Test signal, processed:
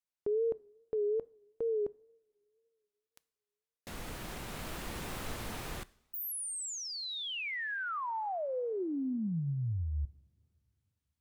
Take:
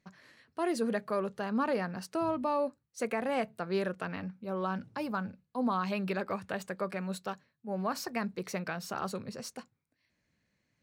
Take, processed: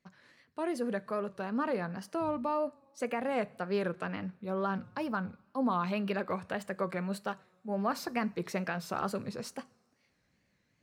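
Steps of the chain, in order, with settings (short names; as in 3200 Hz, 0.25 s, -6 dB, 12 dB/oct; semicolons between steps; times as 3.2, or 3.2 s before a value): high shelf 11000 Hz -6 dB; two-slope reverb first 0.52 s, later 2.8 s, from -20 dB, DRR 18 dB; vocal rider within 3 dB 2 s; wow and flutter 95 cents; dynamic EQ 5500 Hz, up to -4 dB, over -53 dBFS, Q 1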